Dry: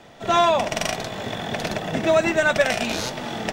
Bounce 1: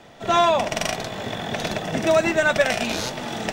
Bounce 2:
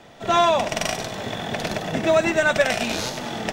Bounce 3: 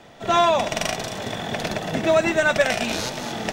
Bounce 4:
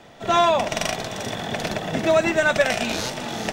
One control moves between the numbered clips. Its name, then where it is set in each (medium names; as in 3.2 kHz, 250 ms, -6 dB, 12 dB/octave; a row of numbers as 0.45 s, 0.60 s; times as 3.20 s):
feedback echo behind a high-pass, time: 1256 ms, 97 ms, 226 ms, 393 ms